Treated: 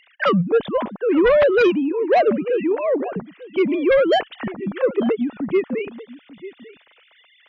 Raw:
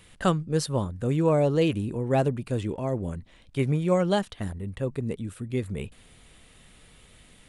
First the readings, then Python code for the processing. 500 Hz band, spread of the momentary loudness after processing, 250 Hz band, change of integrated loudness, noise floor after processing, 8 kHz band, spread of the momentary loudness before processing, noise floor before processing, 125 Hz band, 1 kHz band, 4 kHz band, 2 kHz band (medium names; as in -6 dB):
+10.0 dB, 15 LU, +6.5 dB, +8.0 dB, -56 dBFS, under -15 dB, 12 LU, -55 dBFS, -6.0 dB, +8.5 dB, +6.0 dB, +13.0 dB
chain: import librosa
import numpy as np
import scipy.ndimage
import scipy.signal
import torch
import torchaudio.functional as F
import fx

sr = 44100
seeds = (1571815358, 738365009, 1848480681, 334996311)

y = fx.sine_speech(x, sr)
y = y + 10.0 ** (-18.0 / 20.0) * np.pad(y, (int(893 * sr / 1000.0), 0))[:len(y)]
y = fx.cheby_harmonics(y, sr, harmonics=(5,), levels_db=(-7,), full_scale_db=-9.0)